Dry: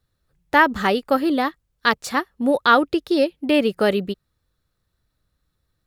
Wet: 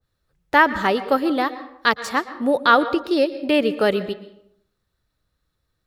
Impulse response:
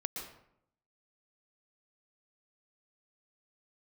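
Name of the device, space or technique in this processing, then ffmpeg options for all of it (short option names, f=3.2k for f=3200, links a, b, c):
filtered reverb send: -filter_complex "[0:a]asplit=2[a][b];[b]highpass=260,lowpass=8.3k[c];[1:a]atrim=start_sample=2205[d];[c][d]afir=irnorm=-1:irlink=0,volume=-8dB[e];[a][e]amix=inputs=2:normalize=0,adynamicequalizer=threshold=0.0562:dfrequency=1700:dqfactor=0.7:tfrequency=1700:tqfactor=0.7:attack=5:release=100:ratio=0.375:range=2:mode=cutabove:tftype=highshelf,volume=-2dB"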